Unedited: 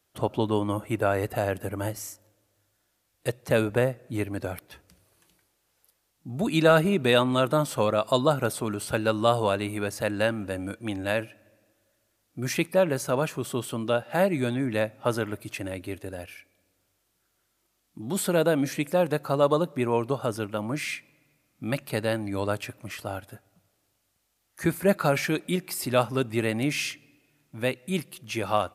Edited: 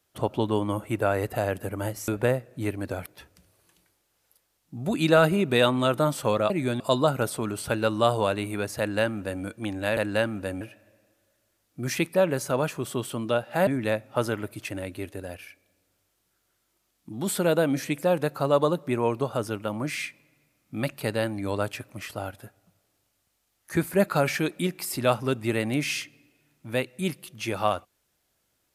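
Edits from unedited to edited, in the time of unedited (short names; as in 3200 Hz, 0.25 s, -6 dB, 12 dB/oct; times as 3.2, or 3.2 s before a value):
2.08–3.61 cut
10.02–10.66 copy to 11.2
14.26–14.56 move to 8.03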